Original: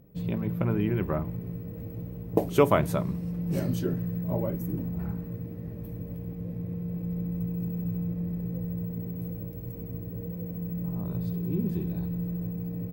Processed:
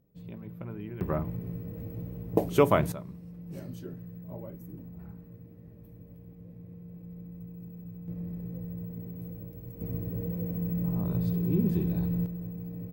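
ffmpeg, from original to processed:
ffmpeg -i in.wav -af "asetnsamples=nb_out_samples=441:pad=0,asendcmd='1.01 volume volume -1dB;2.92 volume volume -12.5dB;8.08 volume volume -5.5dB;9.81 volume volume 2.5dB;12.26 volume volume -5dB',volume=-13dB" out.wav

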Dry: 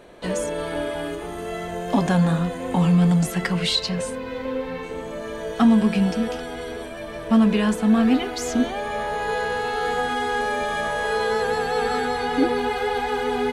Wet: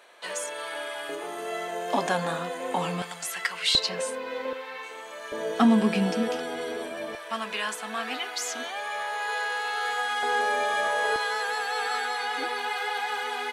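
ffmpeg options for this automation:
ffmpeg -i in.wav -af "asetnsamples=nb_out_samples=441:pad=0,asendcmd='1.09 highpass f 470;3.02 highpass f 1200;3.75 highpass f 460;4.53 highpass f 970;5.32 highpass f 250;7.15 highpass f 1000;10.23 highpass f 490;11.16 highpass f 1000',highpass=990" out.wav

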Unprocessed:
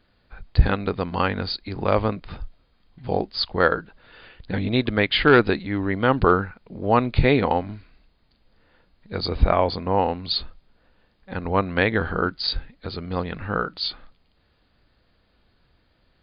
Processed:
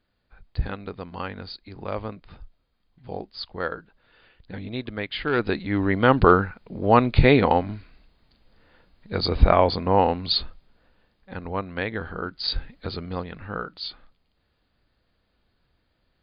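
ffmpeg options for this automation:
ffmpeg -i in.wav -af "volume=12.5dB,afade=type=in:start_time=5.32:duration=0.46:silence=0.251189,afade=type=out:start_time=10.27:duration=1.35:silence=0.316228,afade=type=in:start_time=12.28:duration=0.44:silence=0.298538,afade=type=out:start_time=12.72:duration=0.55:silence=0.354813" out.wav

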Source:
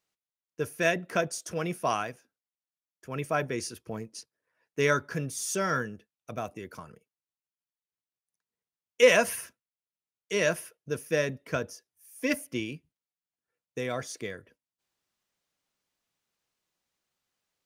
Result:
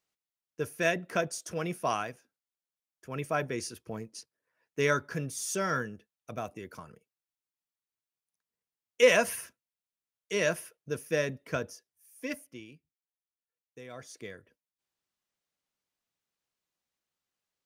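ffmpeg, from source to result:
ffmpeg -i in.wav -af "volume=6dB,afade=type=out:start_time=11.67:duration=0.91:silence=0.251189,afade=type=in:start_time=13.88:duration=0.41:silence=0.398107" out.wav

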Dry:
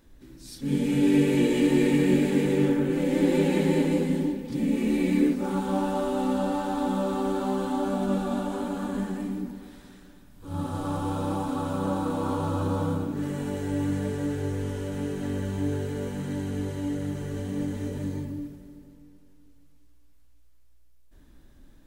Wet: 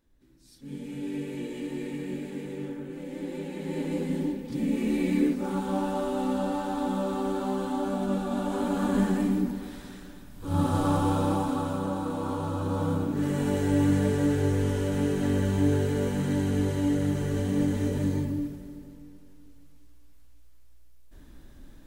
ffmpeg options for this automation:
ffmpeg -i in.wav -af "volume=13.5dB,afade=type=in:start_time=3.58:duration=0.72:silence=0.281838,afade=type=in:start_time=8.3:duration=0.76:silence=0.398107,afade=type=out:start_time=10.76:duration=1.13:silence=0.354813,afade=type=in:start_time=12.63:duration=0.89:silence=0.421697" out.wav

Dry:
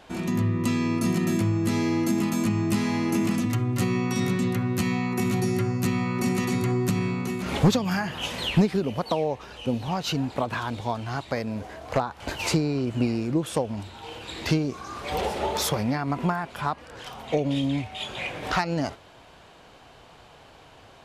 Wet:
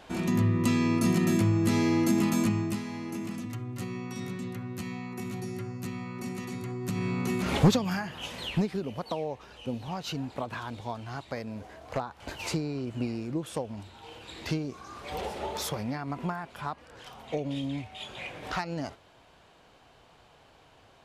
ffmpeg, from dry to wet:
ffmpeg -i in.wav -af "volume=12dB,afade=type=out:start_time=2.39:duration=0.44:silence=0.281838,afade=type=in:start_time=6.8:duration=0.6:silence=0.237137,afade=type=out:start_time=7.4:duration=0.69:silence=0.375837" out.wav

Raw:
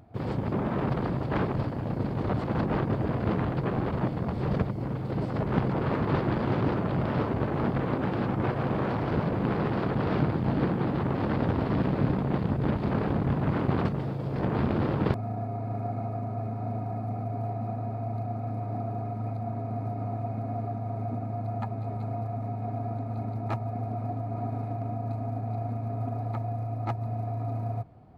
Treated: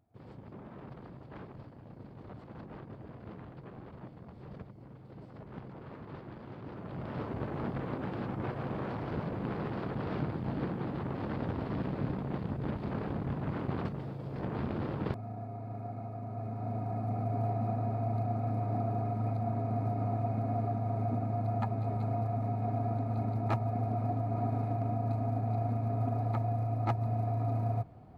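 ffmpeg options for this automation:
ffmpeg -i in.wav -af "afade=type=in:start_time=6.63:duration=0.77:silence=0.281838,afade=type=in:start_time=16.16:duration=1.23:silence=0.375837" out.wav

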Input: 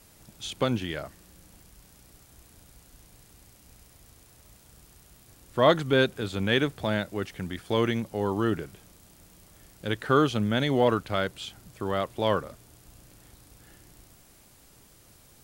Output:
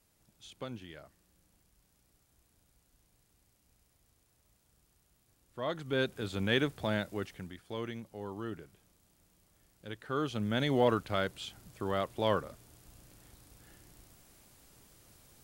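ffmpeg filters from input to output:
ffmpeg -i in.wav -af "volume=4.5dB,afade=type=in:start_time=5.69:duration=0.62:silence=0.281838,afade=type=out:start_time=7.14:duration=0.44:silence=0.354813,afade=type=in:start_time=10.11:duration=0.56:silence=0.334965" out.wav

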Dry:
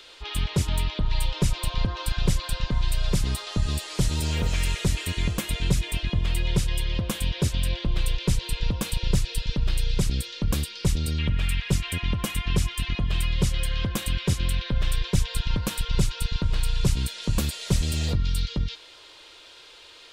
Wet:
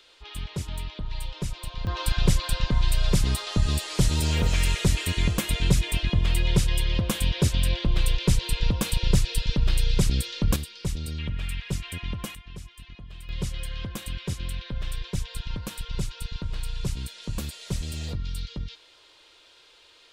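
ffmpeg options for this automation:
ffmpeg -i in.wav -af "asetnsamples=nb_out_samples=441:pad=0,asendcmd='1.87 volume volume 2dB;10.56 volume volume -6dB;12.35 volume volume -17.5dB;13.29 volume volume -7dB',volume=-8dB" out.wav

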